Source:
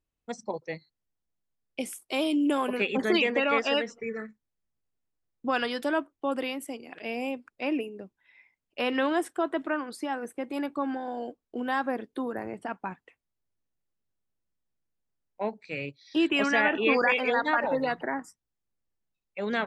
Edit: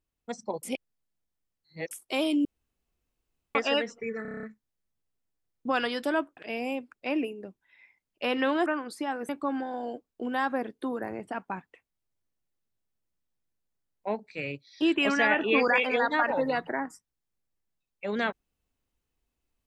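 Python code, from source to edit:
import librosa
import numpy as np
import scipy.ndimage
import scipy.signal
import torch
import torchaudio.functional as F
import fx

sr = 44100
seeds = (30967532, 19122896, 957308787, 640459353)

y = fx.edit(x, sr, fx.reverse_span(start_s=0.63, length_s=1.28),
    fx.room_tone_fill(start_s=2.45, length_s=1.1),
    fx.stutter(start_s=4.22, slice_s=0.03, count=8),
    fx.cut(start_s=6.16, length_s=0.77),
    fx.cut(start_s=9.22, length_s=0.46),
    fx.cut(start_s=10.31, length_s=0.32), tone=tone)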